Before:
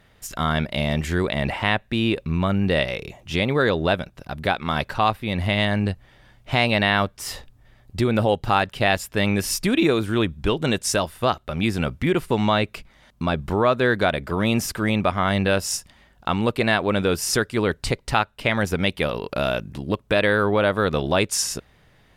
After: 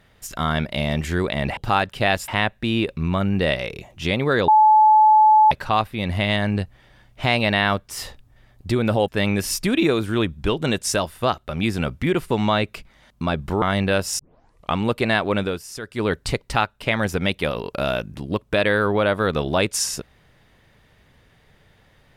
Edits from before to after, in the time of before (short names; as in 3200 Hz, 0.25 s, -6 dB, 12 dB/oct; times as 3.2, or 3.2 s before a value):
3.77–4.8 bleep 862 Hz -9.5 dBFS
8.37–9.08 move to 1.57
13.62–15.2 cut
15.77 tape start 0.56 s
16.95–17.65 dip -13 dB, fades 0.26 s